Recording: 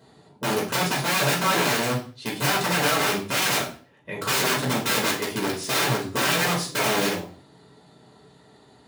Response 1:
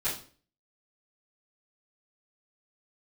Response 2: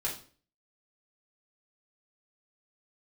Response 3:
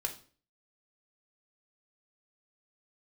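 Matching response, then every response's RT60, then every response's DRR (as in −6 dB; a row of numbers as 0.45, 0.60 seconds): 2; 0.45, 0.45, 0.45 seconds; −13.0, −4.0, 3.5 decibels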